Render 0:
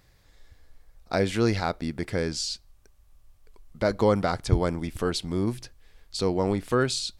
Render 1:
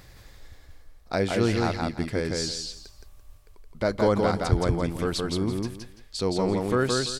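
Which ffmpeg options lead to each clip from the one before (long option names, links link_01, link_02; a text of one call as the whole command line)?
ffmpeg -i in.wav -af "areverse,acompressor=mode=upward:threshold=-36dB:ratio=2.5,areverse,aecho=1:1:169|338|507:0.708|0.163|0.0375,volume=-1dB" out.wav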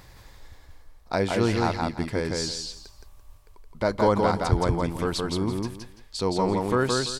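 ffmpeg -i in.wav -af "equalizer=frequency=950:width=3.5:gain=7.5" out.wav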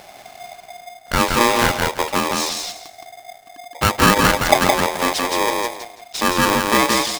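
ffmpeg -i in.wav -af "aeval=exprs='val(0)*sgn(sin(2*PI*710*n/s))':channel_layout=same,volume=7dB" out.wav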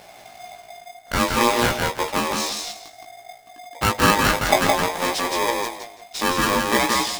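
ffmpeg -i in.wav -af "flanger=delay=16.5:depth=2.5:speed=0.57" out.wav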